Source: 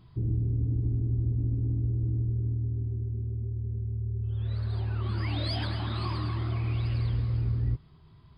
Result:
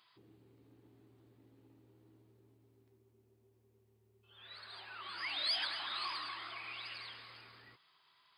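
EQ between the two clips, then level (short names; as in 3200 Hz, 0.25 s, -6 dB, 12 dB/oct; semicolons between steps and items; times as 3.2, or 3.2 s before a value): HPF 1400 Hz 12 dB/oct; +2.5 dB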